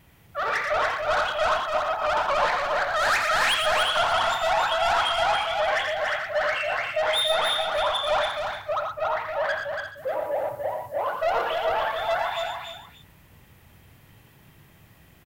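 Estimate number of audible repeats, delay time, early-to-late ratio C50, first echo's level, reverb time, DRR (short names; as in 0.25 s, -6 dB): 6, 85 ms, none, -7.5 dB, none, none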